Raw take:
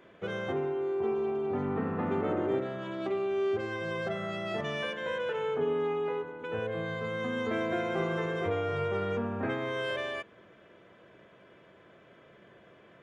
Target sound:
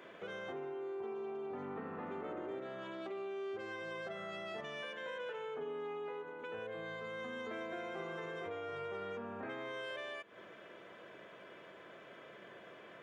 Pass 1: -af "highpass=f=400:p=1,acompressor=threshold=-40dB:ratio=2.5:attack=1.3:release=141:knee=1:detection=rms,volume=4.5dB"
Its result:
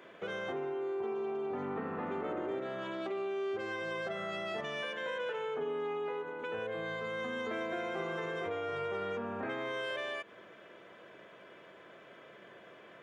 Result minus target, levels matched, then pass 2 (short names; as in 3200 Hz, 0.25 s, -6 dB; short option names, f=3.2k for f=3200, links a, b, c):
compressor: peak gain reduction -6 dB
-af "highpass=f=400:p=1,acompressor=threshold=-50dB:ratio=2.5:attack=1.3:release=141:knee=1:detection=rms,volume=4.5dB"